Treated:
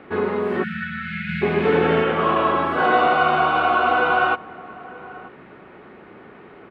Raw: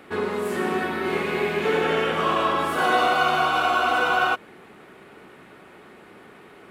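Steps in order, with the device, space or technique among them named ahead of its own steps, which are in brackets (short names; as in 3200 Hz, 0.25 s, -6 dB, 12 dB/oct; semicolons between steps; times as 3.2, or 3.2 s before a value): shout across a valley (air absorption 410 m; outdoor echo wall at 160 m, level -19 dB); 1.29–2.03 tone controls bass +6 dB, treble +6 dB; 0.63–1.42 spectral delete 220–1300 Hz; gain +5 dB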